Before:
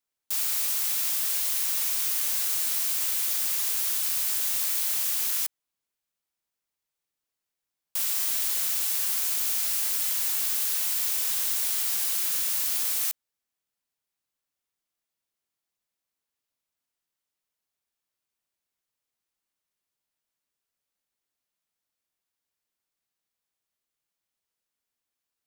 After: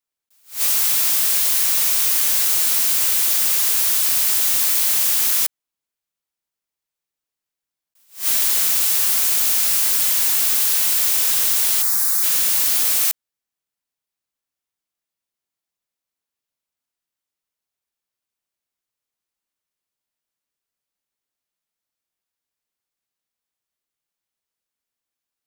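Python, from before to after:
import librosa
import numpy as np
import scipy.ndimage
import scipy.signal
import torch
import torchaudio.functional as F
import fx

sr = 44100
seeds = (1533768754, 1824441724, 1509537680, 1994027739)

y = fx.leveller(x, sr, passes=2)
y = fx.fixed_phaser(y, sr, hz=1200.0, stages=4, at=(11.81, 12.22), fade=0.02)
y = fx.attack_slew(y, sr, db_per_s=210.0)
y = y * 10.0 ** (3.5 / 20.0)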